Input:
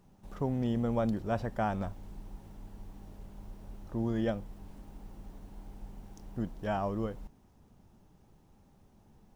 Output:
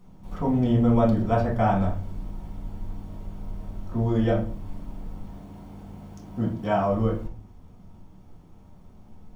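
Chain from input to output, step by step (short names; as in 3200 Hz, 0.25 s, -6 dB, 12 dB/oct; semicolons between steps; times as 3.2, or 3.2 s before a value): 5.21–6.92 HPF 78 Hz 12 dB/oct; reverb RT60 0.45 s, pre-delay 4 ms, DRR -4.5 dB; gain +1 dB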